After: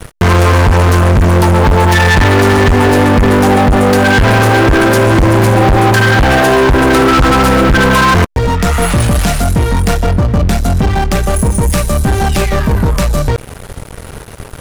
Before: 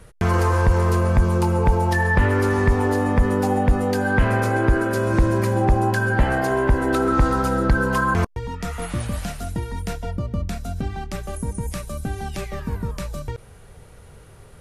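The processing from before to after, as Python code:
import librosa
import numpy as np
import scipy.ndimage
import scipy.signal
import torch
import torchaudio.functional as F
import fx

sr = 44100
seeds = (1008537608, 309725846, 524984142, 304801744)

y = fx.leveller(x, sr, passes=5)
y = F.gain(torch.from_numpy(y), 2.0).numpy()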